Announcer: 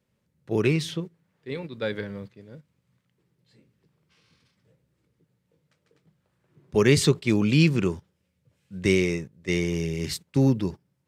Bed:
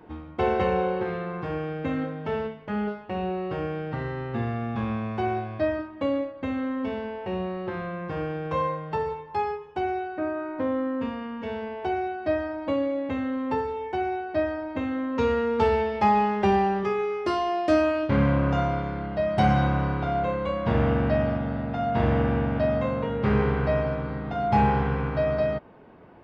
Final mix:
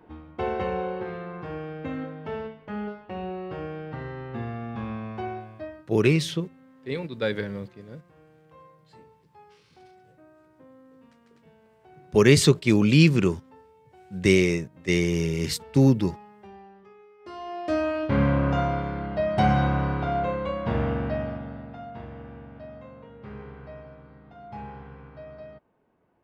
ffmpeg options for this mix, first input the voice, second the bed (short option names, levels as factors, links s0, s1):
-filter_complex "[0:a]adelay=5400,volume=1.33[s0];[1:a]volume=11.2,afade=t=out:st=5.11:d=0.81:silence=0.0891251,afade=t=in:st=17.18:d=1.03:silence=0.0530884,afade=t=out:st=20.13:d=1.94:silence=0.11885[s1];[s0][s1]amix=inputs=2:normalize=0"